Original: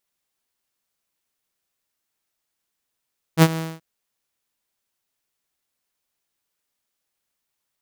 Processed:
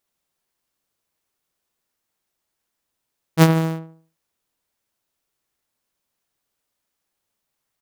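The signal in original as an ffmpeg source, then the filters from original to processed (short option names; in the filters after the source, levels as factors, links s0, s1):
-f lavfi -i "aevalsrc='0.562*(2*mod(162*t,1)-1)':d=0.431:s=44100,afade=t=in:d=0.055,afade=t=out:st=0.055:d=0.048:silence=0.15,afade=t=out:st=0.21:d=0.221"
-filter_complex "[0:a]asplit=2[s0][s1];[s1]acrusher=samples=14:mix=1:aa=0.000001:lfo=1:lforange=8.4:lforate=1.4,volume=0.266[s2];[s0][s2]amix=inputs=2:normalize=0,asplit=2[s3][s4];[s4]adelay=74,lowpass=f=1400:p=1,volume=0.355,asplit=2[s5][s6];[s6]adelay=74,lowpass=f=1400:p=1,volume=0.42,asplit=2[s7][s8];[s8]adelay=74,lowpass=f=1400:p=1,volume=0.42,asplit=2[s9][s10];[s10]adelay=74,lowpass=f=1400:p=1,volume=0.42,asplit=2[s11][s12];[s12]adelay=74,lowpass=f=1400:p=1,volume=0.42[s13];[s3][s5][s7][s9][s11][s13]amix=inputs=6:normalize=0"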